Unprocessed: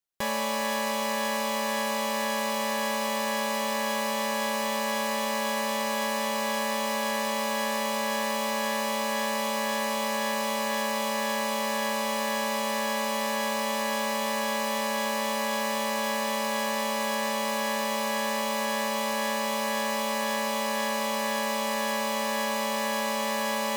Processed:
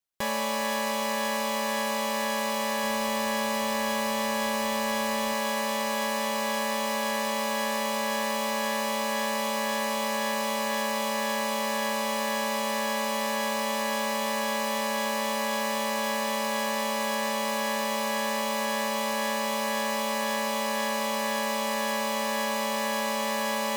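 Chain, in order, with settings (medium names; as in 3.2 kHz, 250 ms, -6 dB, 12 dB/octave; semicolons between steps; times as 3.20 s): 2.84–5.33 s: bass shelf 110 Hz +11.5 dB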